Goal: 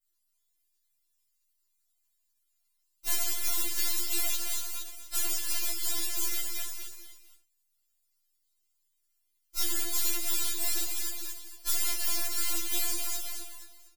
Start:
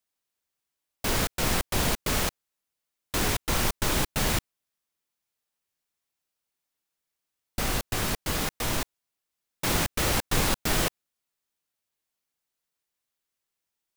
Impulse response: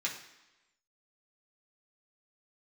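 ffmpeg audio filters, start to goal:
-filter_complex "[0:a]areverse,highshelf=f=8.4k:g=-8.5,aecho=1:1:233|466|699|932:0.447|0.152|0.0516|0.0176[a];[1:a]atrim=start_sample=2205,afade=t=out:st=0.16:d=0.01,atrim=end_sample=7497[b];[a][b]afir=irnorm=-1:irlink=0,aeval=exprs='max(val(0),0)':c=same,acompressor=threshold=-36dB:ratio=3,asetrate=74167,aresample=44100,atempo=0.594604,aemphasis=mode=production:type=75fm,asplit=3[c][d][e];[d]asetrate=29433,aresample=44100,atempo=1.49831,volume=-6dB[f];[e]asetrate=55563,aresample=44100,atempo=0.793701,volume=-4dB[g];[c][f][g]amix=inputs=3:normalize=0,afftfilt=real='re*4*eq(mod(b,16),0)':imag='im*4*eq(mod(b,16),0)':win_size=2048:overlap=0.75,volume=-1dB"

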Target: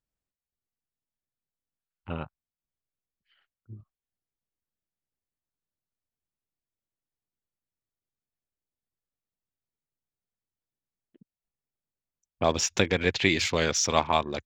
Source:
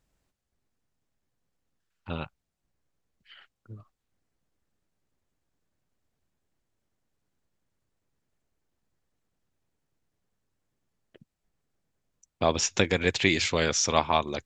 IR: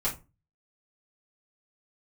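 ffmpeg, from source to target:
-af "afwtdn=0.00631"

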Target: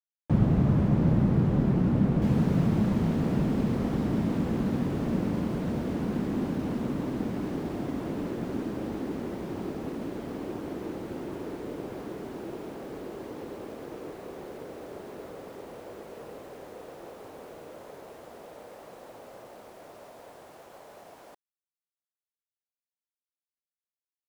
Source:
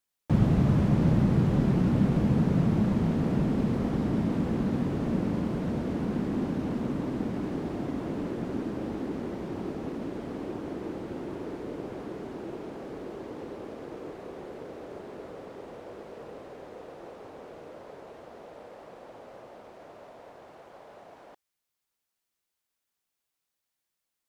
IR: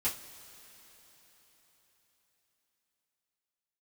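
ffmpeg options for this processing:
-af "acrusher=bits=9:mix=0:aa=0.000001,asetnsamples=n=441:p=0,asendcmd='2.22 highshelf g 2',highshelf=f=2.5k:g=-8"

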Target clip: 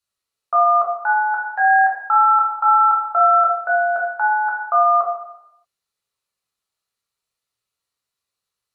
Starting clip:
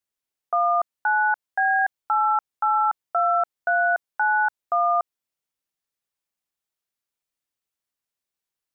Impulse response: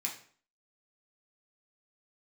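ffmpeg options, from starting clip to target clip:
-filter_complex "[1:a]atrim=start_sample=2205,afade=t=out:st=0.4:d=0.01,atrim=end_sample=18081,asetrate=24255,aresample=44100[a];[0:a][a]afir=irnorm=-1:irlink=0"

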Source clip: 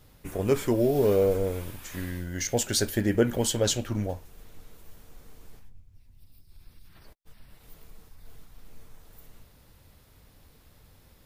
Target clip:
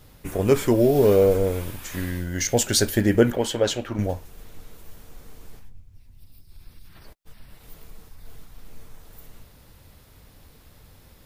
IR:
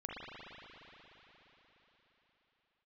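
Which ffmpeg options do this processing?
-filter_complex "[0:a]asettb=1/sr,asplit=3[a][b][c];[a]atrim=end=3.324[d];[b]atrim=start=3.32:end=3.99,asetpts=PTS-STARTPTS,afade=t=in:d=0.004:c=qsin,afade=t=out:st=0.666:d=0.004:c=qsin,bass=f=250:g=-9,treble=f=4k:g=-11[e];[c]atrim=start=3.986[f];[d][e]acrossfade=d=0.004:c1=hsin:c2=qsin[g];[g][f]acrossfade=d=0.004:c1=qsin:c2=hsin,volume=5.5dB"

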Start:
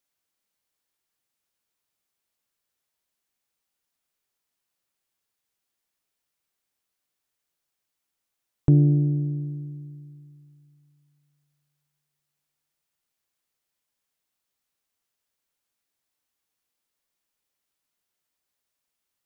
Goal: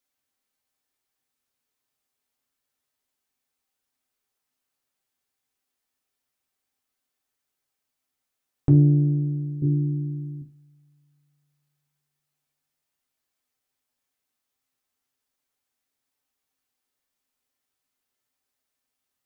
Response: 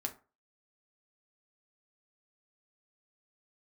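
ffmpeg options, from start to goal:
-filter_complex "[0:a]asettb=1/sr,asplit=3[a][b][c];[a]atrim=end=9.624[d];[b]atrim=start=9.62:end=10.42,asetpts=PTS-STARTPTS,afade=t=in:d=0.004:c=qsin,afade=t=out:st=0.796:d=0.004:c=qsin,lowshelf=f=540:t=q:w=3:g=12.5[e];[c]atrim=start=10.416[f];[d][e]acrossfade=d=0.004:c1=hsin:c2=qsin[g];[g][f]acrossfade=d=0.004:c1=qsin:c2=hsin[h];[1:a]atrim=start_sample=2205,afade=t=out:st=0.19:d=0.01,atrim=end_sample=8820[i];[h][i]afir=irnorm=-1:irlink=0"

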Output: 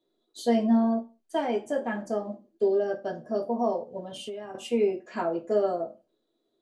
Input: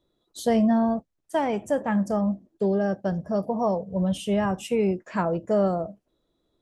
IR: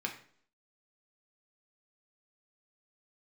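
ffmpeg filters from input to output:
-filter_complex "[1:a]atrim=start_sample=2205,asetrate=83790,aresample=44100[a];[0:a][a]afir=irnorm=-1:irlink=0,asettb=1/sr,asplit=3[b][c][d];[b]atrim=end=3.994[e];[c]atrim=start=3.99:end=4.55,asetpts=PTS-STARTPTS,afade=t=in:d=0.004:c=qsin,afade=t=out:st=0.556:d=0.004:c=qsin,acompressor=threshold=-35dB:ratio=8[f];[d]atrim=start=4.546[g];[e][f]acrossfade=d=0.004:c1=hsin:c2=qsin[h];[h][g]acrossfade=d=0.004:c1=qsin:c2=hsin"

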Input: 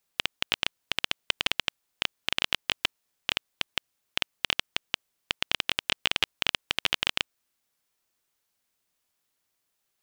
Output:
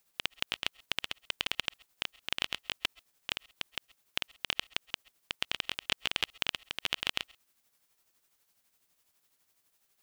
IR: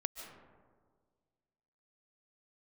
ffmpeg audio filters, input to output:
-filter_complex "[0:a]alimiter=limit=-14.5dB:level=0:latency=1:release=21,tremolo=f=12:d=0.53,asplit=2[a][b];[1:a]atrim=start_sample=2205,atrim=end_sample=6174,highshelf=f=7.8k:g=7.5[c];[b][c]afir=irnorm=-1:irlink=0,volume=-5dB[d];[a][d]amix=inputs=2:normalize=0,volume=2.5dB"

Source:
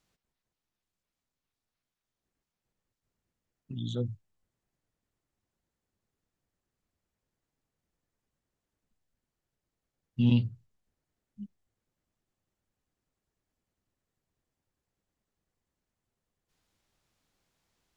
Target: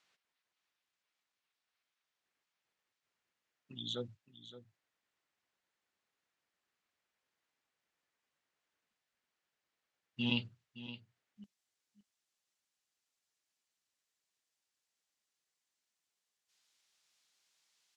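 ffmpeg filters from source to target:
-af "asetnsamples=n=441:p=0,asendcmd='11.44 bandpass f 5300',bandpass=f=2.3k:t=q:w=0.69:csg=0,aecho=1:1:568:0.2,volume=6dB"

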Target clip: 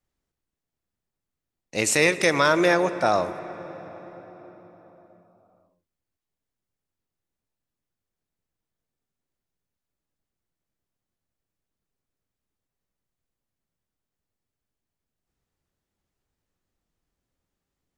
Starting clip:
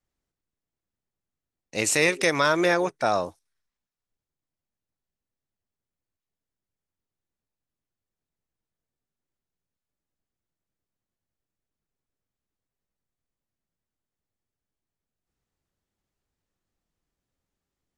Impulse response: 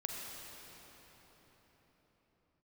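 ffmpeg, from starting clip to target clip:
-filter_complex "[0:a]asplit=2[a][b];[1:a]atrim=start_sample=2205,highshelf=f=3.8k:g=-10.5[c];[b][c]afir=irnorm=-1:irlink=0,volume=-8.5dB[d];[a][d]amix=inputs=2:normalize=0"

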